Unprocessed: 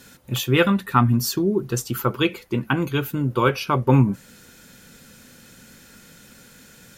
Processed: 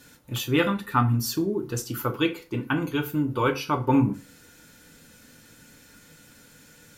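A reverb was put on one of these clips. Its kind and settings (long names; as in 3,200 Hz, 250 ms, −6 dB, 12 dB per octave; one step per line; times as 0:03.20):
feedback delay network reverb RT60 0.34 s, low-frequency decay 1×, high-frequency decay 0.8×, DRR 4 dB
level −5.5 dB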